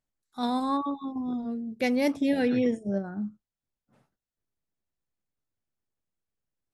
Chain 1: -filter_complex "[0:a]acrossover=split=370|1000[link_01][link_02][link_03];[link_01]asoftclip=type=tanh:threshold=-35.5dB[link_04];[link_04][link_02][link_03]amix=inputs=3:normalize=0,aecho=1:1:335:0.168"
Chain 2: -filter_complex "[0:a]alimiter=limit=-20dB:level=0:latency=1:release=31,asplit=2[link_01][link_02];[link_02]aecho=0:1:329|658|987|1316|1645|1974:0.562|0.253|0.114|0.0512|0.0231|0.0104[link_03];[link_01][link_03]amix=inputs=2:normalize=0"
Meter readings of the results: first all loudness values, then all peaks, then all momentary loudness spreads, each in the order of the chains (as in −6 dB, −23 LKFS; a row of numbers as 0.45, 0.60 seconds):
−31.5, −29.5 LKFS; −16.5, −15.0 dBFS; 10, 17 LU